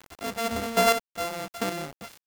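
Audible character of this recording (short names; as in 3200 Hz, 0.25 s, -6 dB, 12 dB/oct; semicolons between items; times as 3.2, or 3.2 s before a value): a buzz of ramps at a fixed pitch in blocks of 64 samples; chopped level 1.3 Hz, depth 65%, duty 20%; a quantiser's noise floor 8-bit, dither none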